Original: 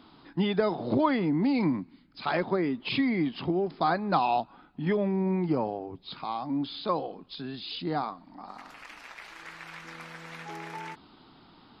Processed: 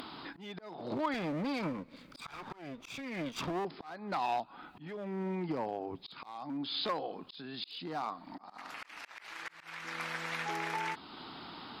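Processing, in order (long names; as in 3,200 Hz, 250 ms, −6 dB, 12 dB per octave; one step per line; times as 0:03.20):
0:01.14–0:03.65: lower of the sound and its delayed copy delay 0.84 ms
downward compressor 3 to 1, threshold −37 dBFS, peak gain reduction 13 dB
asymmetric clip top −32.5 dBFS
spectral tilt +2.5 dB per octave
volume swells 435 ms
high-shelf EQ 4,200 Hz −9.5 dB
upward compression, threshold −46 dBFS
level +6 dB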